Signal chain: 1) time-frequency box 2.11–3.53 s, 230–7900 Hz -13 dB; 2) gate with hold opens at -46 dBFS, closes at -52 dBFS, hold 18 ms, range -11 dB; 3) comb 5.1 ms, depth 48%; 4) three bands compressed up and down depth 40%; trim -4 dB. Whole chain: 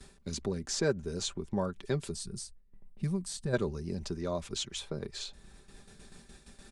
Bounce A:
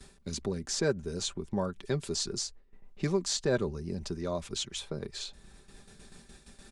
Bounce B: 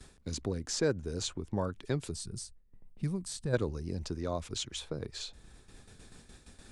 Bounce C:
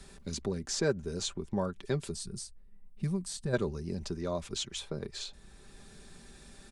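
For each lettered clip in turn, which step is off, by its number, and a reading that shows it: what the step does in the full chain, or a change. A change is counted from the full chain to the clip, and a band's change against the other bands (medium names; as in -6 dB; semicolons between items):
1, momentary loudness spread change -9 LU; 3, crest factor change +2.0 dB; 2, momentary loudness spread change +4 LU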